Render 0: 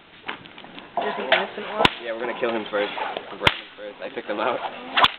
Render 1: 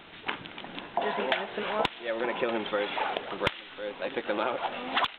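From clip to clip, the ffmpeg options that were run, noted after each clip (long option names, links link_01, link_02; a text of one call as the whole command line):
ffmpeg -i in.wav -af "acompressor=threshold=-25dB:ratio=6" out.wav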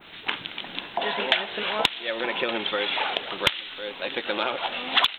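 ffmpeg -i in.wav -af "adynamicequalizer=threshold=0.00631:dfrequency=3700:dqfactor=0.82:tfrequency=3700:tqfactor=0.82:attack=5:release=100:ratio=0.375:range=2:mode=boostabove:tftype=bell,crystalizer=i=4:c=0" out.wav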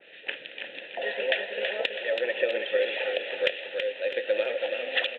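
ffmpeg -i in.wav -filter_complex "[0:a]asplit=3[link_01][link_02][link_03];[link_01]bandpass=frequency=530:width_type=q:width=8,volume=0dB[link_04];[link_02]bandpass=frequency=1840:width_type=q:width=8,volume=-6dB[link_05];[link_03]bandpass=frequency=2480:width_type=q:width=8,volume=-9dB[link_06];[link_04][link_05][link_06]amix=inputs=3:normalize=0,asplit=2[link_07][link_08];[link_08]aecho=0:1:327|654|981|1308|1635|1962:0.501|0.231|0.106|0.0488|0.0224|0.0103[link_09];[link_07][link_09]amix=inputs=2:normalize=0,volume=7dB" out.wav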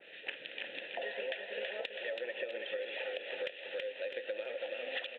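ffmpeg -i in.wav -af "acompressor=threshold=-34dB:ratio=6,volume=-2.5dB" out.wav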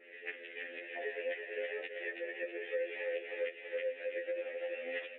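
ffmpeg -i in.wav -af "highpass=frequency=280:width=0.5412,highpass=frequency=280:width=1.3066,equalizer=frequency=280:width_type=q:width=4:gain=4,equalizer=frequency=410:width_type=q:width=4:gain=6,equalizer=frequency=630:width_type=q:width=4:gain=-9,equalizer=frequency=910:width_type=q:width=4:gain=-8,equalizer=frequency=1400:width_type=q:width=4:gain=-6,equalizer=frequency=2100:width_type=q:width=4:gain=6,lowpass=frequency=2300:width=0.5412,lowpass=frequency=2300:width=1.3066,afftfilt=real='re*2*eq(mod(b,4),0)':imag='im*2*eq(mod(b,4),0)':win_size=2048:overlap=0.75,volume=3dB" out.wav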